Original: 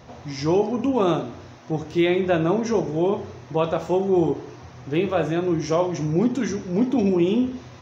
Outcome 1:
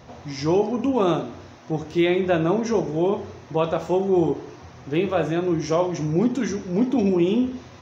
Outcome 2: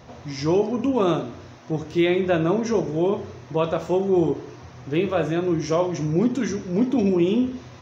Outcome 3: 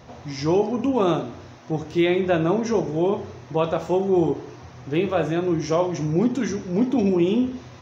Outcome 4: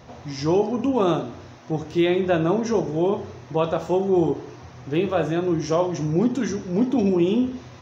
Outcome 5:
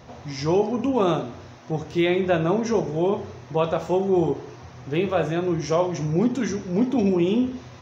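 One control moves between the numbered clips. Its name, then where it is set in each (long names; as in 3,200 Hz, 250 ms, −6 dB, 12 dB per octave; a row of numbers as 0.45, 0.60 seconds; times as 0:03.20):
dynamic equaliser, frequency: 120, 800, 7,800, 2,200, 310 Hertz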